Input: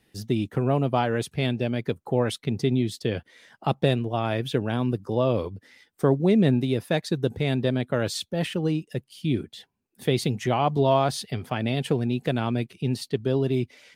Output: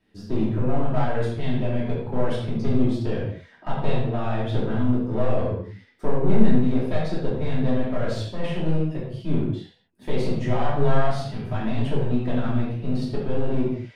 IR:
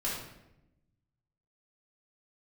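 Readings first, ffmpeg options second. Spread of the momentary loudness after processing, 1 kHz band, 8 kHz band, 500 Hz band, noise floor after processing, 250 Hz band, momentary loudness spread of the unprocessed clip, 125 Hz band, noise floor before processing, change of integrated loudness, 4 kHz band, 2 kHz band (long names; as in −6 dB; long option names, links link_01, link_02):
7 LU, −2.0 dB, below −10 dB, −1.5 dB, −54 dBFS, +1.0 dB, 8 LU, +1.0 dB, −70 dBFS, 0.0 dB, −7.0 dB, −2.5 dB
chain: -filter_complex "[0:a]aeval=exprs='clip(val(0),-1,0.0376)':channel_layout=same,aemphasis=mode=reproduction:type=75fm[link_01];[1:a]atrim=start_sample=2205,afade=type=out:start_time=0.31:duration=0.01,atrim=end_sample=14112[link_02];[link_01][link_02]afir=irnorm=-1:irlink=0,volume=-4dB"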